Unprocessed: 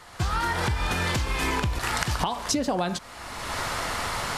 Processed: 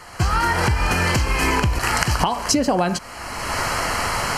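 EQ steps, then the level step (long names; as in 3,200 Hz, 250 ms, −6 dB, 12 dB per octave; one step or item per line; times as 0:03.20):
Butterworth band-reject 3,600 Hz, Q 4.9
+7.0 dB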